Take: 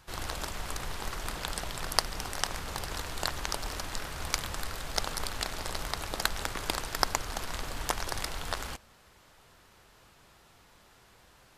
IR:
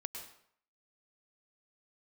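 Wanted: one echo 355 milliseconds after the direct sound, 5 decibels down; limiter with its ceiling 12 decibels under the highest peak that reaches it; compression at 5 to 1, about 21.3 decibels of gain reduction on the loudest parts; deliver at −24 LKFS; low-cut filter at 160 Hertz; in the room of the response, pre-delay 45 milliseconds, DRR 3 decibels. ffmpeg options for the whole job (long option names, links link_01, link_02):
-filter_complex "[0:a]highpass=160,acompressor=threshold=-47dB:ratio=5,alimiter=level_in=9dB:limit=-24dB:level=0:latency=1,volume=-9dB,aecho=1:1:355:0.562,asplit=2[link_01][link_02];[1:a]atrim=start_sample=2205,adelay=45[link_03];[link_02][link_03]afir=irnorm=-1:irlink=0,volume=-1.5dB[link_04];[link_01][link_04]amix=inputs=2:normalize=0,volume=24.5dB"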